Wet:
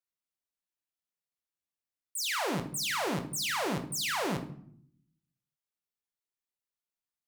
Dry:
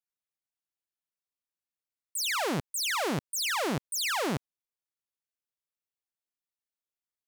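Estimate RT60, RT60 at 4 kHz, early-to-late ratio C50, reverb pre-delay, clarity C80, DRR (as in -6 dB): 0.65 s, 0.40 s, 11.0 dB, 6 ms, 15.0 dB, 5.5 dB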